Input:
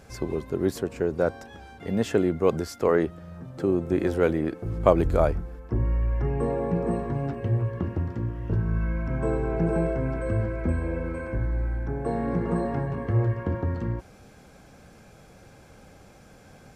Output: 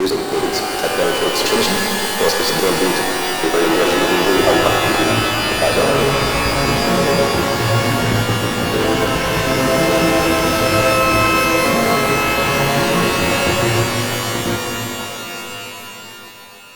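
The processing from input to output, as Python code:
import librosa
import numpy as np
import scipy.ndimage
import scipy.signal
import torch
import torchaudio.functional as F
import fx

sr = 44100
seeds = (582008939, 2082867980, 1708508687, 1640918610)

p1 = fx.block_reorder(x, sr, ms=104.0, group=7)
p2 = fx.highpass(p1, sr, hz=400.0, slope=6)
p3 = fx.peak_eq(p2, sr, hz=4300.0, db=13.5, octaves=0.52)
p4 = fx.fuzz(p3, sr, gain_db=41.0, gate_db=-39.0)
p5 = p3 + (p4 * librosa.db_to_amplitude(-3.5))
p6 = fx.rev_shimmer(p5, sr, seeds[0], rt60_s=3.8, semitones=12, shimmer_db=-2, drr_db=1.0)
y = p6 * librosa.db_to_amplitude(-1.0)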